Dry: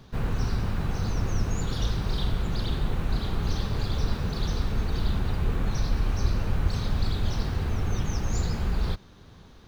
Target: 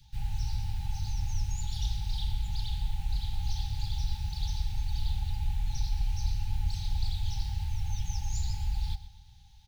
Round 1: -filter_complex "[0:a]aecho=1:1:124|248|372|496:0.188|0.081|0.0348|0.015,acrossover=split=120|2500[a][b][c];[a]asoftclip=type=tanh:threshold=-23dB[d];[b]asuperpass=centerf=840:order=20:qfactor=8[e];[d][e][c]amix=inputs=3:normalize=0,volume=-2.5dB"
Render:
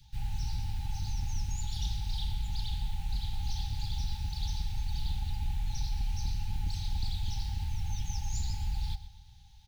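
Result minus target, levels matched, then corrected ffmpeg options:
soft clip: distortion +11 dB
-filter_complex "[0:a]aecho=1:1:124|248|372|496:0.188|0.081|0.0348|0.015,acrossover=split=120|2500[a][b][c];[a]asoftclip=type=tanh:threshold=-15dB[d];[b]asuperpass=centerf=840:order=20:qfactor=8[e];[d][e][c]amix=inputs=3:normalize=0,volume=-2.5dB"

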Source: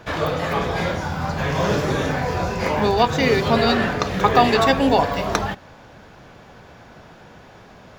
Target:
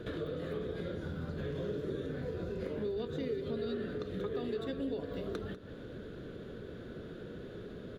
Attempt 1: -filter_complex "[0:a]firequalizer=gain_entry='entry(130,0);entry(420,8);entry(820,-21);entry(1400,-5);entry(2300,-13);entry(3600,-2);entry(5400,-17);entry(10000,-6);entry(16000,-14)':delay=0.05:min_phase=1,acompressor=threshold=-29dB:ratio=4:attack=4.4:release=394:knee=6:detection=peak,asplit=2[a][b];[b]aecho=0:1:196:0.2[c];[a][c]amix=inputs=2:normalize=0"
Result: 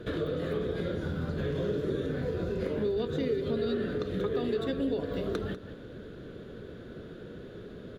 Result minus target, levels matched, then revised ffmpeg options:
compressor: peak gain reduction -6.5 dB
-filter_complex "[0:a]firequalizer=gain_entry='entry(130,0);entry(420,8);entry(820,-21);entry(1400,-5);entry(2300,-13);entry(3600,-2);entry(5400,-17);entry(10000,-6);entry(16000,-14)':delay=0.05:min_phase=1,acompressor=threshold=-37.5dB:ratio=4:attack=4.4:release=394:knee=6:detection=peak,asplit=2[a][b];[b]aecho=0:1:196:0.2[c];[a][c]amix=inputs=2:normalize=0"

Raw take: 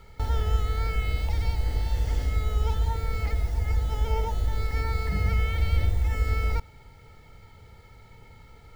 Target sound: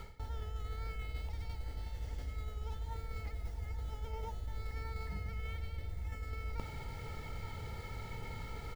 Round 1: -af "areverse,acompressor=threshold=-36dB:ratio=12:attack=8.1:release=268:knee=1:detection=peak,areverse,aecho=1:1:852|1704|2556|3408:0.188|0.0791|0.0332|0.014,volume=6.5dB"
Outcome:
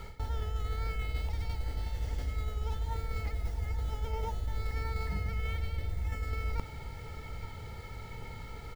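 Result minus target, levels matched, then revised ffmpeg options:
compressor: peak gain reduction -7 dB
-af "areverse,acompressor=threshold=-43.5dB:ratio=12:attack=8.1:release=268:knee=1:detection=peak,areverse,aecho=1:1:852|1704|2556|3408:0.188|0.0791|0.0332|0.014,volume=6.5dB"

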